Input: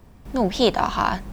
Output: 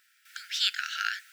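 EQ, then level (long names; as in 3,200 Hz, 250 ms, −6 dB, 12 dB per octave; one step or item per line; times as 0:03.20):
linear-phase brick-wall high-pass 1,300 Hz
0.0 dB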